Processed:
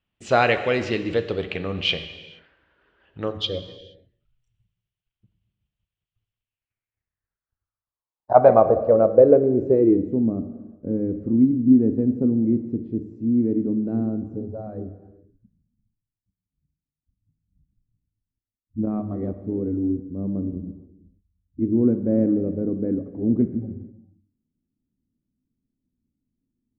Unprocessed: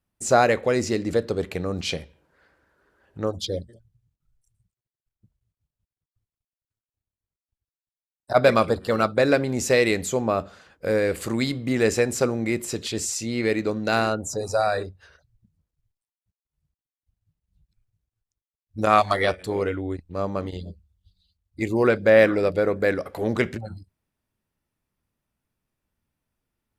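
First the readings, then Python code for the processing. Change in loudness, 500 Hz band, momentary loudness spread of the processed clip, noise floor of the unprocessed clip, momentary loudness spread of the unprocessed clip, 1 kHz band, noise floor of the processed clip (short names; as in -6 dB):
+2.0 dB, +0.5 dB, 17 LU, under -85 dBFS, 12 LU, -1.5 dB, under -85 dBFS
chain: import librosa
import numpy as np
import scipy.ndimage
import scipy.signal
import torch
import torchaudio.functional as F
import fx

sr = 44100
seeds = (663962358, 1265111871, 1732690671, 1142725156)

y = fx.rev_gated(x, sr, seeds[0], gate_ms=500, shape='falling', drr_db=9.5)
y = fx.filter_sweep_lowpass(y, sr, from_hz=3000.0, to_hz=260.0, start_s=6.38, end_s=10.24, q=4.0)
y = y * 10.0 ** (-1.5 / 20.0)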